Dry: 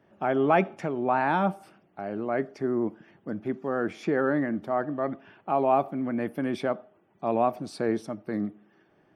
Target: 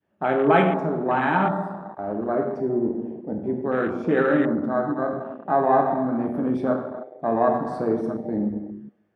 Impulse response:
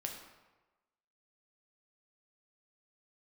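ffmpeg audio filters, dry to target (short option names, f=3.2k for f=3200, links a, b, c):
-filter_complex "[1:a]atrim=start_sample=2205,asetrate=35721,aresample=44100[a];[0:a][a]afir=irnorm=-1:irlink=0,afwtdn=0.02,adynamicequalizer=threshold=0.02:dfrequency=600:dqfactor=0.75:tfrequency=600:tqfactor=0.75:attack=5:release=100:ratio=0.375:range=2:mode=cutabove:tftype=bell,volume=5.5dB"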